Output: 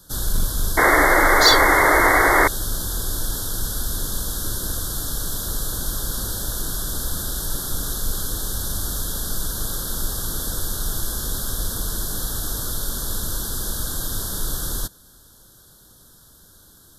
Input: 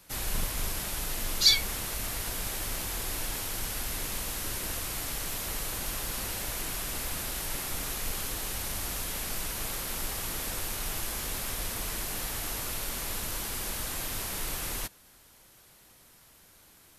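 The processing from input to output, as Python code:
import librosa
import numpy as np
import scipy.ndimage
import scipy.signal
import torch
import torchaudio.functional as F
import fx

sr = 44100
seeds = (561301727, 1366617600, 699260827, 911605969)

p1 = scipy.signal.sosfilt(scipy.signal.cheby1(3, 1.0, [1600.0, 3400.0], 'bandstop', fs=sr, output='sos'), x)
p2 = fx.low_shelf(p1, sr, hz=150.0, db=4.5)
p3 = 10.0 ** (-22.0 / 20.0) * (np.abs((p2 / 10.0 ** (-22.0 / 20.0) + 3.0) % 4.0 - 2.0) - 1.0)
p4 = p2 + (p3 * 10.0 ** (-11.0 / 20.0))
p5 = fx.peak_eq(p4, sr, hz=790.0, db=-6.5, octaves=1.0)
p6 = fx.spec_paint(p5, sr, seeds[0], shape='noise', start_s=0.77, length_s=1.71, low_hz=270.0, high_hz=2200.0, level_db=-21.0)
y = p6 * 10.0 ** (5.5 / 20.0)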